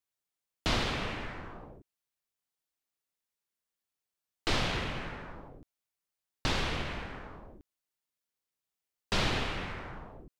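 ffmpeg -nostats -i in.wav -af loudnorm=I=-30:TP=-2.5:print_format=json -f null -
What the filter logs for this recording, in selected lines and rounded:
"input_i" : "-33.9",
"input_tp" : "-16.5",
"input_lra" : "3.5",
"input_thresh" : "-45.6",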